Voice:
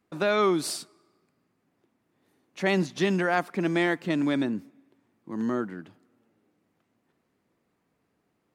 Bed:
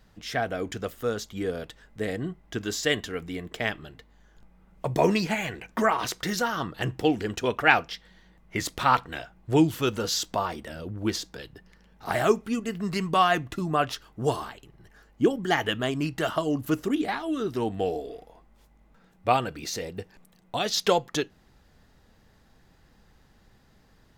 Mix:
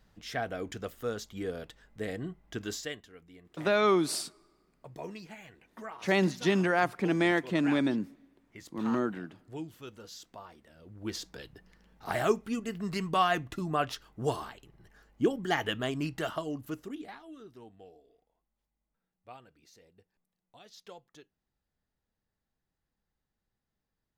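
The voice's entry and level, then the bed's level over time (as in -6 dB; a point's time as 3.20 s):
3.45 s, -1.5 dB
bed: 2.74 s -6 dB
3.01 s -20 dB
10.73 s -20 dB
11.24 s -5 dB
16.12 s -5 dB
17.96 s -27 dB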